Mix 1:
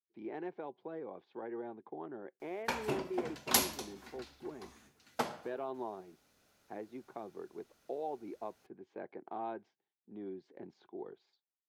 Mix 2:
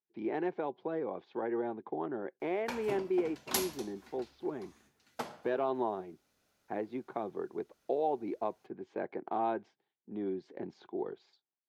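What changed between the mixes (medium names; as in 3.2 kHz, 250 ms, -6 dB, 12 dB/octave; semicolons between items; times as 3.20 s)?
speech +8.0 dB; background -4.5 dB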